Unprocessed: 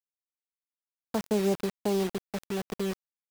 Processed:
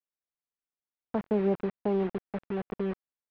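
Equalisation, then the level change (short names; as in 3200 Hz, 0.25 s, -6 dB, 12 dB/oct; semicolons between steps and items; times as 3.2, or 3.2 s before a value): Bessel low-pass 1700 Hz, order 4; 0.0 dB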